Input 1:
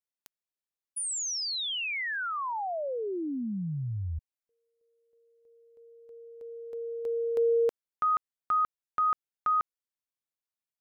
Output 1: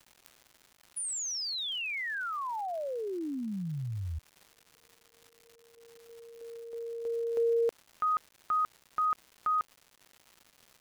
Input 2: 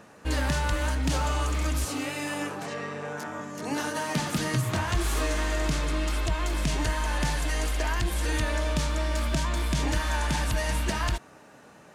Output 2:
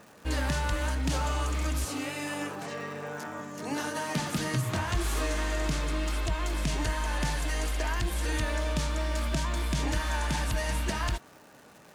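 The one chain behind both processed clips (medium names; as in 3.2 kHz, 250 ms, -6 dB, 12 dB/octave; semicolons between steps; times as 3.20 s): crackle 320 per s -42 dBFS; trim -2.5 dB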